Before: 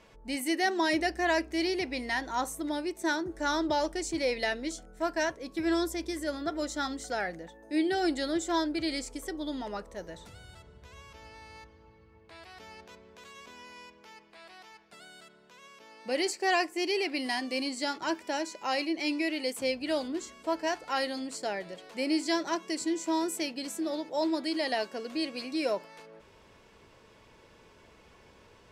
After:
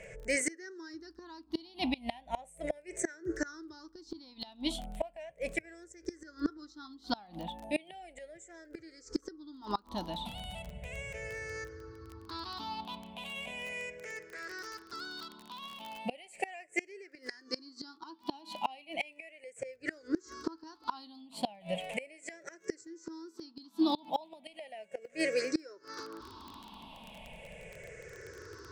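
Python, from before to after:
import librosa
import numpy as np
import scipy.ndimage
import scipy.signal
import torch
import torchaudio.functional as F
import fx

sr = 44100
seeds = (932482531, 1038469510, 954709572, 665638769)

y = fx.spec_ripple(x, sr, per_octave=0.51, drift_hz=-0.36, depth_db=23)
y = scipy.signal.sosfilt(scipy.signal.butter(2, 9600.0, 'lowpass', fs=sr, output='sos'), y)
y = fx.rider(y, sr, range_db=5, speed_s=2.0)
y = fx.dmg_crackle(y, sr, seeds[0], per_s=fx.steps((0.0, 20.0), (14.58, 61.0), (16.0, 19.0)), level_db=-37.0)
y = fx.gate_flip(y, sr, shuts_db=-20.0, range_db=-27)
y = y * 10.0 ** (1.0 / 20.0)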